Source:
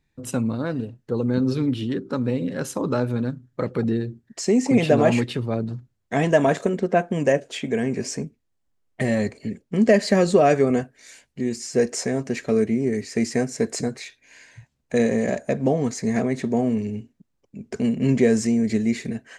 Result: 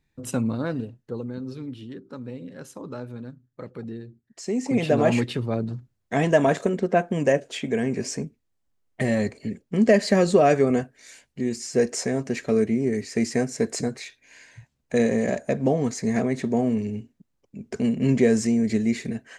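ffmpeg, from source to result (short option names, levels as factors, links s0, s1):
-af "volume=3.35,afade=t=out:st=0.68:d=0.67:silence=0.266073,afade=t=in:st=4.25:d=0.98:silence=0.266073"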